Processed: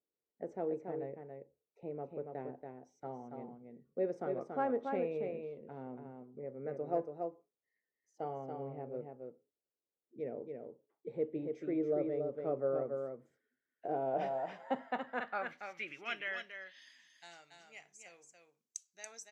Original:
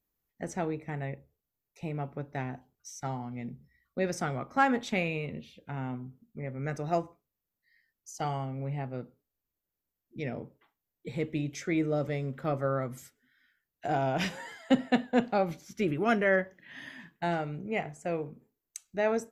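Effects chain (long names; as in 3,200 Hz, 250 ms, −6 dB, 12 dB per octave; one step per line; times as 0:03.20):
single-tap delay 282 ms −5 dB
band-pass filter sweep 460 Hz → 6,200 Hz, 0:13.99–0:17.05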